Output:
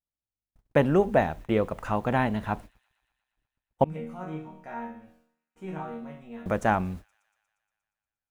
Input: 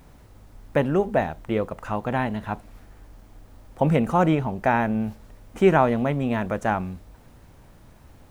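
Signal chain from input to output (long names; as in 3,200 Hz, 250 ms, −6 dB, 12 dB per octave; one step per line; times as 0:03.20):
noise gate −39 dBFS, range −51 dB
0:03.84–0:06.46: resonators tuned to a chord D#3 minor, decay 0.6 s
delay with a high-pass on its return 118 ms, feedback 71%, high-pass 3,400 Hz, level −22 dB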